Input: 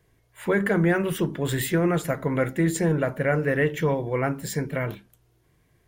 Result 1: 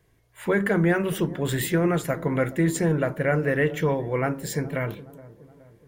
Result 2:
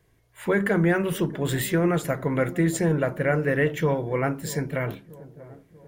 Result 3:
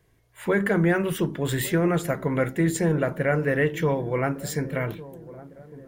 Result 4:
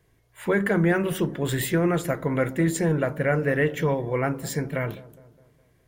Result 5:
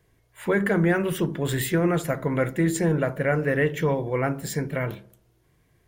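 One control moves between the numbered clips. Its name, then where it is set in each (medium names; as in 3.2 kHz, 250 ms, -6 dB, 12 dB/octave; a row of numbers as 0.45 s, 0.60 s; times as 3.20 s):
feedback echo behind a low-pass, time: 420 ms, 637 ms, 1155 ms, 206 ms, 70 ms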